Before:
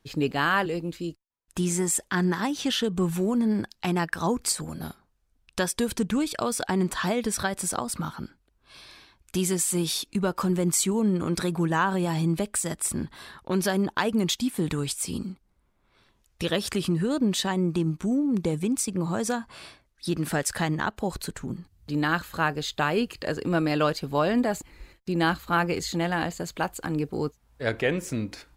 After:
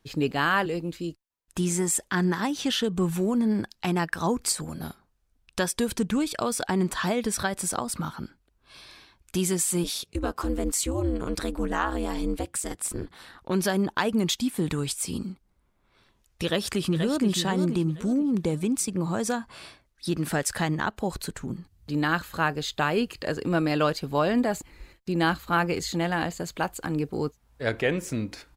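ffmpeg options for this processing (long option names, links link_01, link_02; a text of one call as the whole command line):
ffmpeg -i in.wav -filter_complex "[0:a]asplit=3[link_01][link_02][link_03];[link_01]afade=type=out:start_time=9.83:duration=0.02[link_04];[link_02]aeval=exprs='val(0)*sin(2*PI*130*n/s)':channel_layout=same,afade=type=in:start_time=9.83:duration=0.02,afade=type=out:start_time=13.39:duration=0.02[link_05];[link_03]afade=type=in:start_time=13.39:duration=0.02[link_06];[link_04][link_05][link_06]amix=inputs=3:normalize=0,asplit=2[link_07][link_08];[link_08]afade=type=in:start_time=16.44:duration=0.01,afade=type=out:start_time=17.26:duration=0.01,aecho=0:1:480|960|1440|1920:0.398107|0.139338|0.0487681|0.0170688[link_09];[link_07][link_09]amix=inputs=2:normalize=0" out.wav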